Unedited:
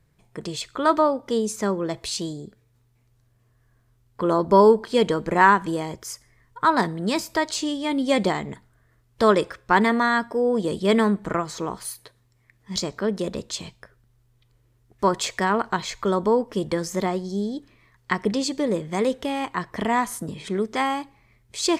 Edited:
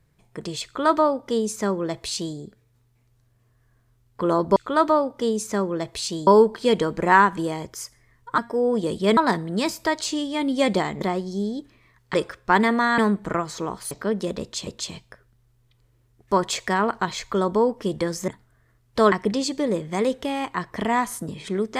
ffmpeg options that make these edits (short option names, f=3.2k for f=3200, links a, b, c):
-filter_complex "[0:a]asplit=12[a][b][c][d][e][f][g][h][i][j][k][l];[a]atrim=end=4.562[m];[b]atrim=start=0.648:end=2.362[n];[c]atrim=start=4.558:end=6.672[o];[d]atrim=start=10.188:end=10.982[p];[e]atrim=start=6.668:end=8.512[q];[f]atrim=start=16.988:end=18.122[r];[g]atrim=start=9.348:end=10.192[s];[h]atrim=start=10.978:end=11.912[t];[i]atrim=start=12.878:end=13.642[u];[j]atrim=start=13.378:end=16.992[v];[k]atrim=start=8.508:end=9.352[w];[l]atrim=start=18.118[x];[m][n]acrossfade=d=0.004:c1=hsin:c2=hsin[y];[y][o]acrossfade=d=0.004:c1=hsin:c2=hsin[z];[z][p]acrossfade=d=0.004:c1=hsin:c2=hsin[aa];[aa][q]acrossfade=d=0.004:c1=hsin:c2=hsin[ab];[ab][r]acrossfade=d=0.004:c1=hsin:c2=hsin[ac];[ac][s]acrossfade=d=0.004:c1=hsin:c2=hsin[ad];[ad][t]acrossfade=d=0.004:c1=hsin:c2=hsin[ae];[ae][u]acrossfade=d=0.004:c1=hsin:c2=hsin[af];[af][v]acrossfade=d=0.004:c1=hsin:c2=hsin[ag];[ag][w]acrossfade=d=0.004:c1=hsin:c2=hsin[ah];[ah][x]acrossfade=d=0.004:c1=hsin:c2=hsin"